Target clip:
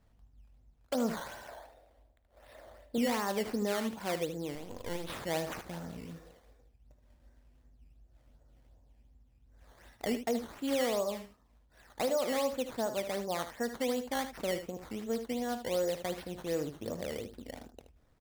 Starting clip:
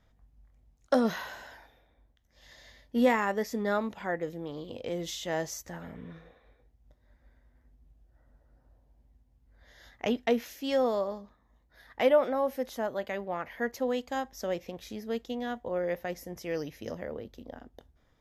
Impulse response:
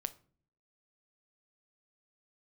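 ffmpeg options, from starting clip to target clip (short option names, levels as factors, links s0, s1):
-filter_complex "[0:a]equalizer=f=2500:t=o:w=1.7:g=-6.5,alimiter=limit=0.0631:level=0:latency=1:release=100,acrusher=samples=12:mix=1:aa=0.000001:lfo=1:lforange=12:lforate=2.7,asettb=1/sr,asplit=3[s0][s1][s2];[s0]atrim=end=1.484[s3];[s1]atrim=start=1.48:end=2.98,asetpts=PTS-STARTPTS,afade=t=in:d=0.004:c=qsin,afade=t=out:st=1.496:d=0.004:c=qsin,equalizer=f=160:t=o:w=0.67:g=-11,equalizer=f=630:t=o:w=0.67:g=11,equalizer=f=6300:t=o:w=0.67:g=-4[s4];[s2]atrim=start=2.976[s5];[s3][s4]acrossfade=d=0.004:c1=hsin:c2=qsin[s6];[s6][s5]acrossfade=d=0.004:c1=qsin:c2=hsin,aecho=1:1:54|76:0.126|0.299,asettb=1/sr,asplit=3[s7][s8][s9];[s7]atrim=end=4.554[s10];[s8]atrim=start=4.55:end=5.1,asetpts=PTS-STARTPTS,afade=t=in:d=0.004:c=qsin,afade=t=out:st=0.546:d=0.004:c=qsin,aeval=exprs='max(val(0),0)':c=same[s11];[s9]atrim=start=5.096[s12];[s10][s11]acrossfade=d=0.004:c1=hsin:c2=qsin[s13];[s13][s12]acrossfade=d=0.004:c1=qsin:c2=hsin"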